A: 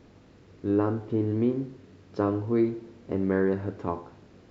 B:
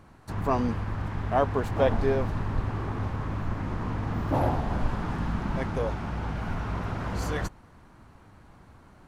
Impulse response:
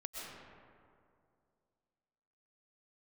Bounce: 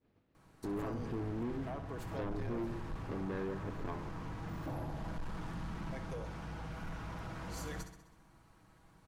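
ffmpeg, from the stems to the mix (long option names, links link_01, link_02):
-filter_complex "[0:a]lowpass=2800,agate=range=-33dB:threshold=-41dB:ratio=3:detection=peak,acompressor=threshold=-36dB:ratio=2.5,volume=0dB[link_01];[1:a]aecho=1:1:6.2:0.43,acrossover=split=320[link_02][link_03];[link_03]acompressor=threshold=-30dB:ratio=6[link_04];[link_02][link_04]amix=inputs=2:normalize=0,adelay=350,volume=-12dB,asplit=2[link_05][link_06];[link_06]volume=-10.5dB,aecho=0:1:65|130|195|260|325|390|455|520:1|0.55|0.303|0.166|0.0915|0.0503|0.0277|0.0152[link_07];[link_01][link_05][link_07]amix=inputs=3:normalize=0,highshelf=frequency=3900:gain=9,asoftclip=type=tanh:threshold=-33.5dB"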